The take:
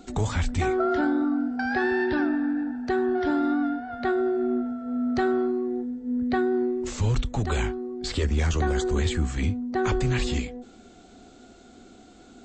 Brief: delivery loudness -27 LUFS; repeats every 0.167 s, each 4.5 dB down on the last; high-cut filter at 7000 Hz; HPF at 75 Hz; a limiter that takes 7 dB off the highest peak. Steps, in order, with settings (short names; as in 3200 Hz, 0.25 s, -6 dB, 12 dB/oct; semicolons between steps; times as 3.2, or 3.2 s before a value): HPF 75 Hz; LPF 7000 Hz; limiter -20.5 dBFS; feedback echo 0.167 s, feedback 60%, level -4.5 dB; gain -1.5 dB